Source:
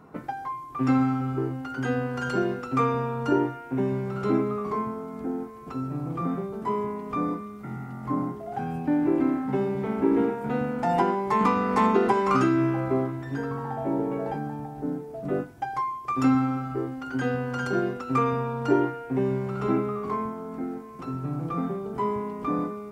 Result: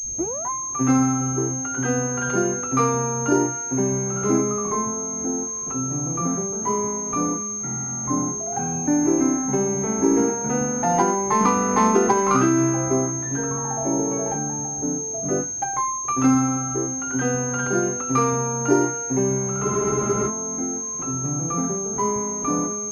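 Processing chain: tape start at the beginning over 0.50 s; spectral freeze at 19.66, 0.62 s; pulse-width modulation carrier 6400 Hz; gain +3.5 dB

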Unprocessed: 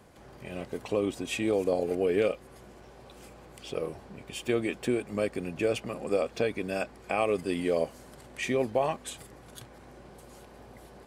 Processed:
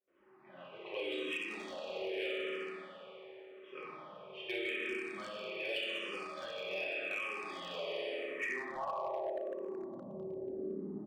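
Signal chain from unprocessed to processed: low-pass opened by the level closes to 730 Hz, open at -22 dBFS; high shelf 2500 Hz -9 dB; gate with hold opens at -47 dBFS; bell 91 Hz -8.5 dB 1.1 oct; early reflections 50 ms -10.5 dB, 63 ms -10.5 dB; reverb RT60 2.7 s, pre-delay 3 ms, DRR -8 dB; band-pass sweep 3100 Hz -> 260 Hz, 8.1–10.15; compressor 16:1, threshold -41 dBFS, peak gain reduction 17.5 dB; hard clip -38.5 dBFS, distortion -23 dB; endless phaser -0.85 Hz; gain +8.5 dB

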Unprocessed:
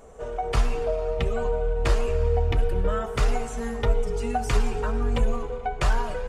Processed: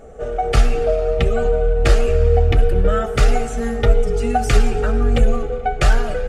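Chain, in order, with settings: Butterworth band-stop 1000 Hz, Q 3.5; mismatched tape noise reduction decoder only; gain +8.5 dB

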